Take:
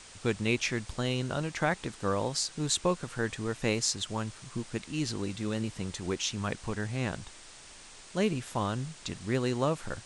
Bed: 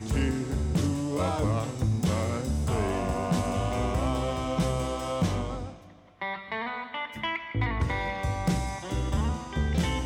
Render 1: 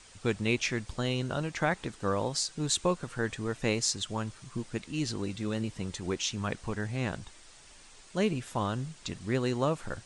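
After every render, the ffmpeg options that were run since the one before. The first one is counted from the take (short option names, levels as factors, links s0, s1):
-af "afftdn=nr=6:nf=-51"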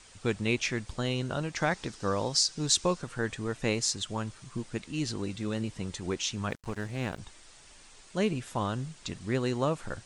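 -filter_complex "[0:a]asettb=1/sr,asplit=3[s0][s1][s2];[s0]atrim=end=1.564[s3];[s1]atrim=start=1.56:end=3.02,asetpts=PTS-STARTPTS,afade=t=in:d=0.004:c=qsin,afade=t=out:st=1.456:d=0.004:c=qsin,equalizer=f=5300:w=1.9:g=8.5[s4];[s2]atrim=start=3.016[s5];[s3][s4]acrossfade=d=0.004:c1=hsin:c2=qsin[s6];[s6][s5]acrossfade=d=0.004:c1=qsin:c2=hsin,asettb=1/sr,asplit=3[s7][s8][s9];[s7]atrim=end=6.504[s10];[s8]atrim=start=6.5:end=7.19,asetpts=PTS-STARTPTS,afade=t=in:d=0.004:c=qsin,afade=t=out:st=0.686:d=0.004:c=qsin,aeval=exprs='sgn(val(0))*max(abs(val(0))-0.00562,0)':c=same[s11];[s9]atrim=start=7.186[s12];[s10][s11]acrossfade=d=0.004:c1=hsin:c2=qsin[s13];[s13][s12]acrossfade=d=0.004:c1=qsin:c2=hsin"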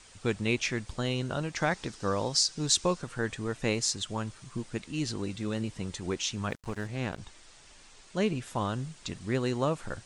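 -filter_complex "[0:a]asettb=1/sr,asplit=3[s0][s1][s2];[s0]atrim=end=6.874[s3];[s1]atrim=start=6.87:end=8.42,asetpts=PTS-STARTPTS,afade=t=in:d=0.004:c=qsin,afade=t=out:st=1.546:d=0.004:c=qsin,lowpass=8800[s4];[s2]atrim=start=8.416[s5];[s3][s4]acrossfade=d=0.004:c1=hsin:c2=qsin[s6];[s6][s5]acrossfade=d=0.004:c1=qsin:c2=hsin"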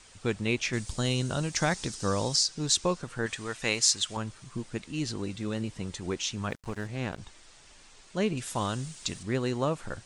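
-filter_complex "[0:a]asettb=1/sr,asplit=3[s0][s1][s2];[s0]atrim=end=0.734[s3];[s1]atrim=start=0.73:end=2.36,asetpts=PTS-STARTPTS,afade=t=in:d=0.004:c=qsin,afade=t=out:st=1.626:d=0.004:c=qsin,bass=f=250:g=4,treble=f=4000:g=12[s4];[s2]atrim=start=2.356[s5];[s3][s4]acrossfade=d=0.004:c1=hsin:c2=qsin[s6];[s6][s5]acrossfade=d=0.004:c1=qsin:c2=hsin,asettb=1/sr,asplit=3[s7][s8][s9];[s7]atrim=end=3.264[s10];[s8]atrim=start=3.26:end=4.17,asetpts=PTS-STARTPTS,afade=t=in:d=0.004:c=qsin,afade=t=out:st=0.906:d=0.004:c=qsin,tiltshelf=f=780:g=-6.5[s11];[s9]atrim=start=4.166[s12];[s10][s11]acrossfade=d=0.004:c1=hsin:c2=qsin[s13];[s13][s12]acrossfade=d=0.004:c1=qsin:c2=hsin,asettb=1/sr,asplit=3[s14][s15][s16];[s14]atrim=end=8.374[s17];[s15]atrim=start=8.37:end=9.23,asetpts=PTS-STARTPTS,afade=t=in:d=0.004:c=qsin,afade=t=out:st=0.856:d=0.004:c=qsin,highshelf=f=3700:g=11.5[s18];[s16]atrim=start=9.226[s19];[s17][s18]acrossfade=d=0.004:c1=hsin:c2=qsin[s20];[s20][s19]acrossfade=d=0.004:c1=qsin:c2=hsin"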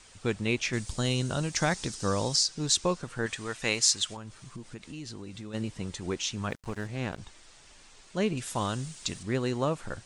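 -filter_complex "[0:a]asplit=3[s0][s1][s2];[s0]afade=t=out:st=4.13:d=0.02[s3];[s1]acompressor=threshold=0.0126:ratio=4:attack=3.2:release=140:knee=1:detection=peak,afade=t=in:st=4.13:d=0.02,afade=t=out:st=5.53:d=0.02[s4];[s2]afade=t=in:st=5.53:d=0.02[s5];[s3][s4][s5]amix=inputs=3:normalize=0"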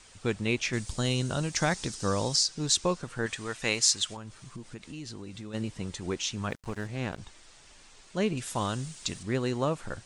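-af anull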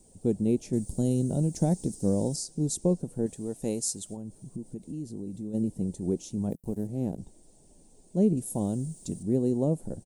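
-af "firequalizer=gain_entry='entry(120,0);entry(170,8);entry(780,-5);entry(1200,-27);entry(2000,-27);entry(11000,9)':delay=0.05:min_phase=1"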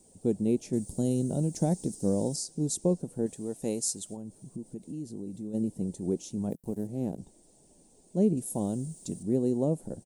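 -af "lowshelf=f=85:g=-11"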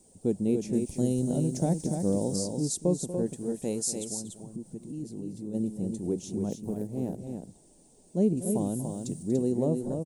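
-af "aecho=1:1:238|290:0.211|0.501"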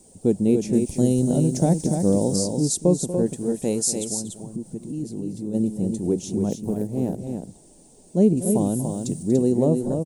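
-af "volume=2.37"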